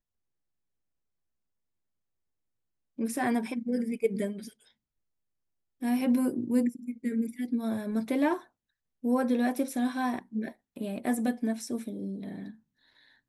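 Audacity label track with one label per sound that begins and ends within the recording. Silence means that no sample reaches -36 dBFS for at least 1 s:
2.990000	4.480000	sound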